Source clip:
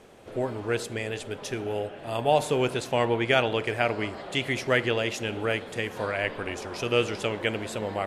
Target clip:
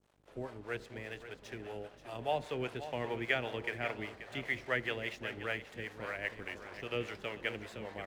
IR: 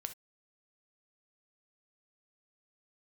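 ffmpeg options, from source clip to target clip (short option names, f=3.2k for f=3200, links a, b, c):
-filter_complex "[0:a]adynamicequalizer=threshold=0.00708:dfrequency=1900:dqfactor=2.3:tfrequency=1900:tqfactor=2.3:attack=5:release=100:ratio=0.375:range=3.5:mode=boostabove:tftype=bell,acrossover=split=110|1200|5800[a][b][c][d];[d]acompressor=threshold=-58dB:ratio=6[e];[a][b][c][e]amix=inputs=4:normalize=0,aeval=exprs='val(0)+0.00447*(sin(2*PI*50*n/s)+sin(2*PI*2*50*n/s)/2+sin(2*PI*3*50*n/s)/3+sin(2*PI*4*50*n/s)/4+sin(2*PI*5*50*n/s)/5)':c=same,aeval=exprs='sgn(val(0))*max(abs(val(0))-0.00562,0)':c=same,acrossover=split=440[f][g];[f]aeval=exprs='val(0)*(1-0.7/2+0.7/2*cos(2*PI*5*n/s))':c=same[h];[g]aeval=exprs='val(0)*(1-0.7/2-0.7/2*cos(2*PI*5*n/s))':c=same[i];[h][i]amix=inputs=2:normalize=0,aecho=1:1:532:0.251,volume=-9dB"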